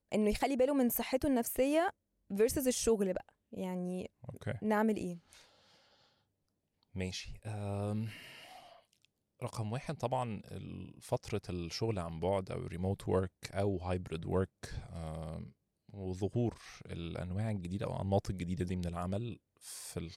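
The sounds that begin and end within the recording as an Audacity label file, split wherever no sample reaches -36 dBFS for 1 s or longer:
6.960000	8.070000	sound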